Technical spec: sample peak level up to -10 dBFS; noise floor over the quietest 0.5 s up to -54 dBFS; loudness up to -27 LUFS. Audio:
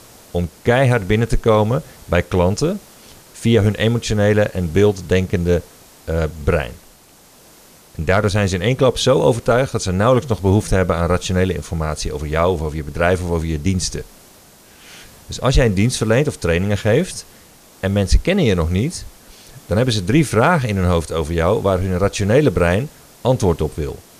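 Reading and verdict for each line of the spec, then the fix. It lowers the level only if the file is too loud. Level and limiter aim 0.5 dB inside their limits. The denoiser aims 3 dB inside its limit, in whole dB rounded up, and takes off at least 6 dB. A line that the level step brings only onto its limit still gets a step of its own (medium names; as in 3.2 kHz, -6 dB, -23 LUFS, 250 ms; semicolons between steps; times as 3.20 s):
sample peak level -2.5 dBFS: fail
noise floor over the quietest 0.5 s -48 dBFS: fail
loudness -17.5 LUFS: fail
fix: trim -10 dB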